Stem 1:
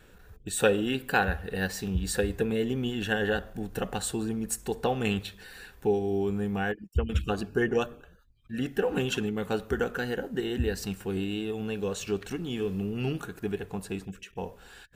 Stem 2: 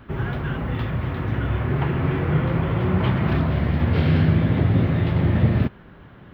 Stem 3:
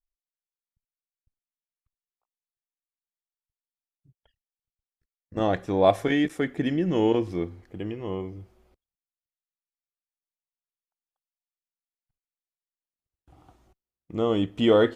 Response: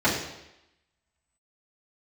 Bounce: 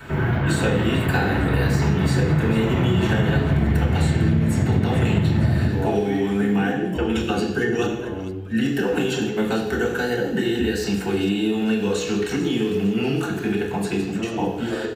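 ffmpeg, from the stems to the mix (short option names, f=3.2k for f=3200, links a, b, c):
-filter_complex "[0:a]equalizer=f=4.4k:w=0.3:g=3,acrossover=split=200|1100|3900[a][b][c][d];[a]acompressor=threshold=-50dB:ratio=4[e];[b]acompressor=threshold=-39dB:ratio=4[f];[c]acompressor=threshold=-46dB:ratio=4[g];[d]acompressor=threshold=-43dB:ratio=4[h];[e][f][g][h]amix=inputs=4:normalize=0,volume=2.5dB,asplit=3[i][j][k];[j]volume=-5dB[l];[k]volume=-9.5dB[m];[1:a]tiltshelf=f=970:g=-3,acrossover=split=200[n][o];[o]acompressor=threshold=-30dB:ratio=6[p];[n][p]amix=inputs=2:normalize=0,volume=-3.5dB,asplit=2[q][r];[r]volume=-7.5dB[s];[2:a]acompressor=threshold=-30dB:ratio=6,volume=-8dB,asplit=2[t][u];[u]volume=-6dB[v];[3:a]atrim=start_sample=2205[w];[l][s][v]amix=inputs=3:normalize=0[x];[x][w]afir=irnorm=-1:irlink=0[y];[m]aecho=0:1:451|902|1353|1804|2255|2706|3157:1|0.5|0.25|0.125|0.0625|0.0312|0.0156[z];[i][q][t][y][z]amix=inputs=5:normalize=0,acompressor=threshold=-15dB:ratio=6"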